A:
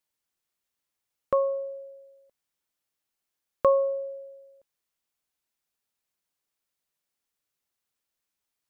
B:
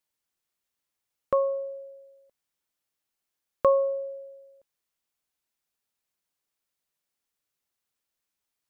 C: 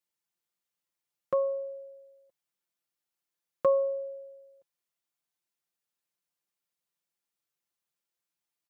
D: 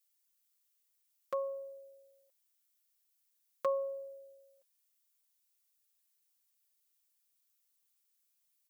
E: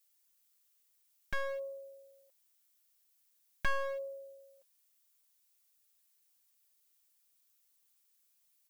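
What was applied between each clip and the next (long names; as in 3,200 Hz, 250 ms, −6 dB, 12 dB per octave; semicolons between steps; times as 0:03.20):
no processing that can be heard
high-pass filter 60 Hz; comb filter 5.8 ms; level −6 dB
spectral tilt +4.5 dB per octave; level −5 dB
wavefolder on the positive side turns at −40.5 dBFS; level +4.5 dB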